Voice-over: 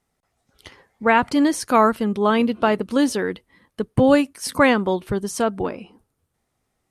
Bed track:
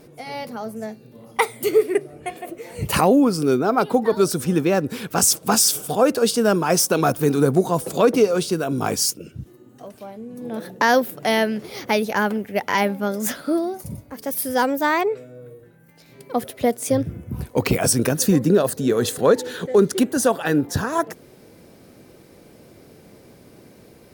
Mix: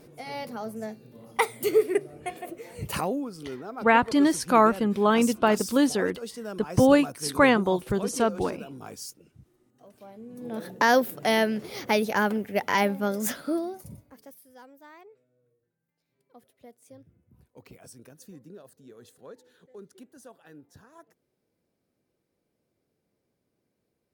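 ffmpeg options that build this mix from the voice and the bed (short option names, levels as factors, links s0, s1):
-filter_complex "[0:a]adelay=2800,volume=0.708[s0];[1:a]volume=3.55,afade=t=out:st=2.44:d=0.84:silence=0.188365,afade=t=in:st=9.72:d=1.01:silence=0.16788,afade=t=out:st=13.13:d=1.27:silence=0.0446684[s1];[s0][s1]amix=inputs=2:normalize=0"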